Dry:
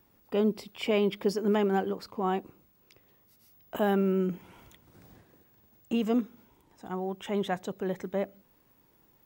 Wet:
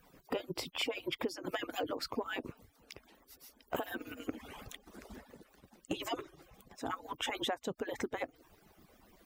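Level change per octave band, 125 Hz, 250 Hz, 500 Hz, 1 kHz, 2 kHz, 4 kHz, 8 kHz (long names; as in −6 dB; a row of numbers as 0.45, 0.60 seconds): −16.0 dB, −13.0 dB, −11.0 dB, −6.5 dB, −1.5 dB, +2.0 dB, can't be measured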